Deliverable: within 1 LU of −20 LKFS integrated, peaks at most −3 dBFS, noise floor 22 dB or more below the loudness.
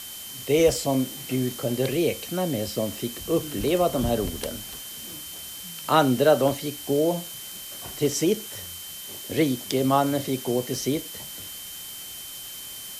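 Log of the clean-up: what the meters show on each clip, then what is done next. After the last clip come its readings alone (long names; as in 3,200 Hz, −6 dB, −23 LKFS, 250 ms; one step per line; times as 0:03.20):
interfering tone 3,100 Hz; level of the tone −42 dBFS; background noise floor −39 dBFS; target noise floor −48 dBFS; integrated loudness −26.0 LKFS; sample peak −5.5 dBFS; target loudness −20.0 LKFS
→ notch filter 3,100 Hz, Q 30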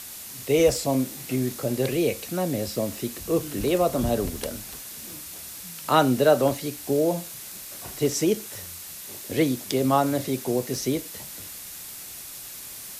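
interfering tone none found; background noise floor −40 dBFS; target noise floor −48 dBFS
→ broadband denoise 8 dB, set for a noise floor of −40 dBFS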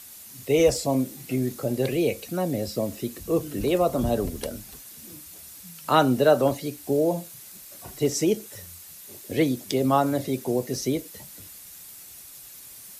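background noise floor −45 dBFS; target noise floor −47 dBFS
→ broadband denoise 6 dB, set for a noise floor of −45 dBFS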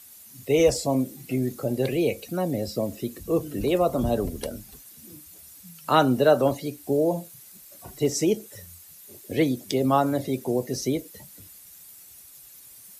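background noise floor −49 dBFS; integrated loudness −25.0 LKFS; sample peak −6.0 dBFS; target loudness −20.0 LKFS
→ level +5 dB
brickwall limiter −3 dBFS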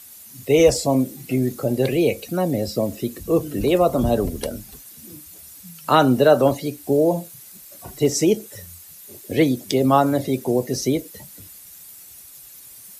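integrated loudness −20.0 LKFS; sample peak −3.0 dBFS; background noise floor −44 dBFS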